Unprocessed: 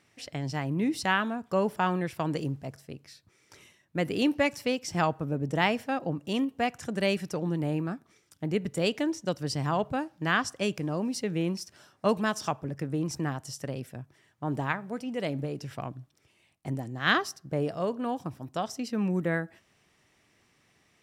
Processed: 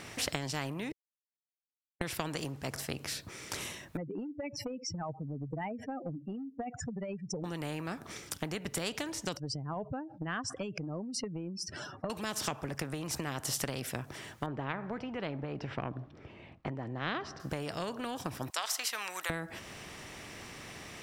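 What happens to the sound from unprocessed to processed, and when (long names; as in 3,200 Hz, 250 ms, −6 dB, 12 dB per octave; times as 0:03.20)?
0:00.92–0:02.01: silence
0:03.97–0:07.44: expanding power law on the bin magnitudes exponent 3.6
0:09.37–0:12.10: expanding power law on the bin magnitudes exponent 2.3
0:14.46–0:17.40: head-to-tape spacing loss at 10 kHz 42 dB
0:18.50–0:19.30: high-pass filter 1,000 Hz 24 dB per octave
whole clip: low-shelf EQ 440 Hz +6 dB; downward compressor 12 to 1, threshold −35 dBFS; every bin compressed towards the loudest bin 2 to 1; level +7 dB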